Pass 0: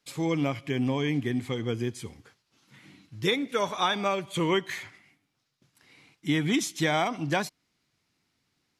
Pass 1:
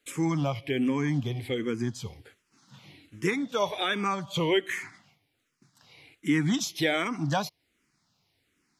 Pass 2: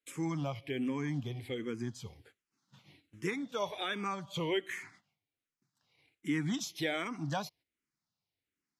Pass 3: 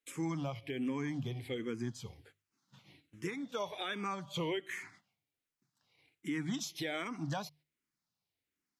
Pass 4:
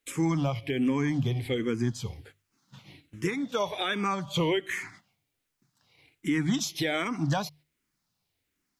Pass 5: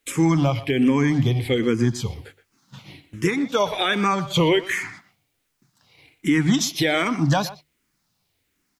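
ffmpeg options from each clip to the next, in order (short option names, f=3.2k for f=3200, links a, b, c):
-filter_complex "[0:a]asplit=2[a][b];[b]alimiter=limit=-23.5dB:level=0:latency=1:release=465,volume=-1dB[c];[a][c]amix=inputs=2:normalize=0,asplit=2[d][e];[e]afreqshift=-1.3[f];[d][f]amix=inputs=2:normalize=1"
-af "agate=range=-11dB:threshold=-52dB:ratio=16:detection=peak,volume=-8dB"
-af "bandreject=f=50:t=h:w=6,bandreject=f=100:t=h:w=6,bandreject=f=150:t=h:w=6,alimiter=level_in=3.5dB:limit=-24dB:level=0:latency=1:release=214,volume=-3.5dB"
-af "lowshelf=f=68:g=11.5,volume=9dB"
-filter_complex "[0:a]asplit=2[a][b];[b]adelay=120,highpass=300,lowpass=3.4k,asoftclip=type=hard:threshold=-25.5dB,volume=-14dB[c];[a][c]amix=inputs=2:normalize=0,volume=8dB"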